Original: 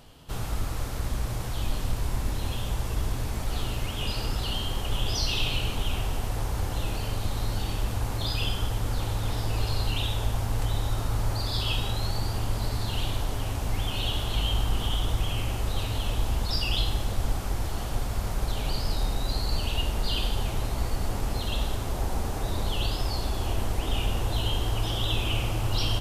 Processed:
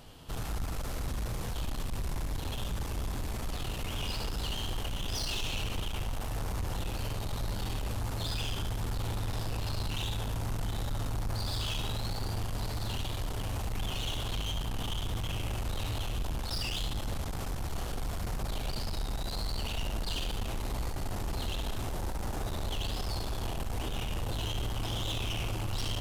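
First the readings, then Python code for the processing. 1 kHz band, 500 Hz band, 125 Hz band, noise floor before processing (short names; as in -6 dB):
-5.5 dB, -5.5 dB, -6.0 dB, -32 dBFS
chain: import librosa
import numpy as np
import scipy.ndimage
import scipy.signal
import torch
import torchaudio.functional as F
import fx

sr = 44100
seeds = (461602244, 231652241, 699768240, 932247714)

y = 10.0 ** (-31.0 / 20.0) * np.tanh(x / 10.0 ** (-31.0 / 20.0))
y = y + 10.0 ** (-9.0 / 20.0) * np.pad(y, (int(72 * sr / 1000.0), 0))[:len(y)]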